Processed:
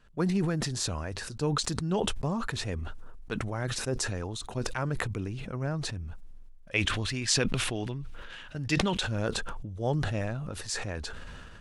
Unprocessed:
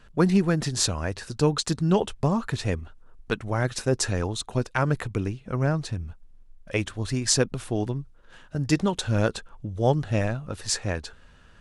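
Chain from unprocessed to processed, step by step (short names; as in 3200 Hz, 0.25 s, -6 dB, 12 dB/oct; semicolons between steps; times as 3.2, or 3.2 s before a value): 6.74–9.03 bell 2700 Hz +11 dB 1.6 oct; sustainer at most 22 dB/s; gain -8.5 dB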